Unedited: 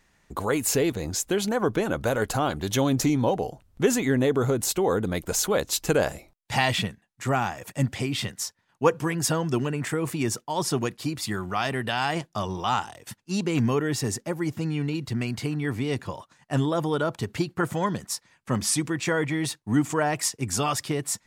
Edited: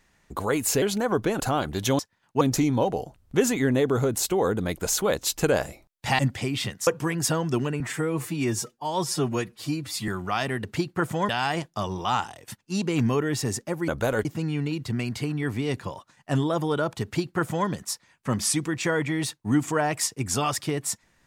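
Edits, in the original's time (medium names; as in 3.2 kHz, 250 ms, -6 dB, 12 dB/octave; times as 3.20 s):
0.82–1.33 s: delete
1.91–2.28 s: move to 14.47 s
6.65–7.77 s: delete
8.45–8.87 s: move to 2.87 s
9.80–11.32 s: stretch 1.5×
17.25–17.90 s: copy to 11.88 s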